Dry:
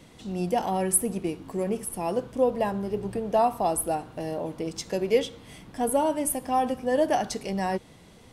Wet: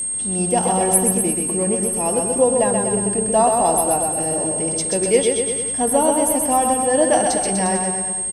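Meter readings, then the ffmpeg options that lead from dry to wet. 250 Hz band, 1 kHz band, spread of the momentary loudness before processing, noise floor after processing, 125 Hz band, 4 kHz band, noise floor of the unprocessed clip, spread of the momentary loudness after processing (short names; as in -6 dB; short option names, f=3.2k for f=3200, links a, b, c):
+7.5 dB, +7.5 dB, 9 LU, -24 dBFS, +7.5 dB, +7.5 dB, -52 dBFS, 4 LU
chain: -af "aecho=1:1:130|247|352.3|447.1|532.4:0.631|0.398|0.251|0.158|0.1,aeval=exprs='val(0)+0.0447*sin(2*PI*8500*n/s)':c=same,volume=5.5dB"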